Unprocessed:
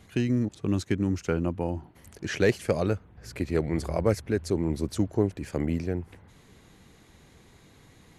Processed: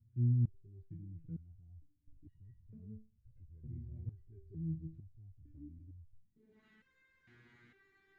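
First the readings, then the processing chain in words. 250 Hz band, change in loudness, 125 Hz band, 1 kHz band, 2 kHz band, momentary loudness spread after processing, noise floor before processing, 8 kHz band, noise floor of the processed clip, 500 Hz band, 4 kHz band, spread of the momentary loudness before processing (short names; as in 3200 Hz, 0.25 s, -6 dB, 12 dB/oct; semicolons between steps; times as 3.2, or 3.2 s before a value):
-19.0 dB, -12.0 dB, -7.5 dB, under -35 dB, under -30 dB, 25 LU, -56 dBFS, under -35 dB, -74 dBFS, -36.0 dB, under -35 dB, 9 LU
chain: in parallel at -6 dB: Schmitt trigger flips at -37.5 dBFS; on the sum: tilt +3 dB/oct; low-pass sweep 100 Hz -> 1300 Hz, 6.14–6.64; reverse; compressor, threshold -31 dBFS, peak gain reduction 5 dB; reverse; band shelf 780 Hz -15 dB; stepped resonator 2.2 Hz 120–950 Hz; gain +8 dB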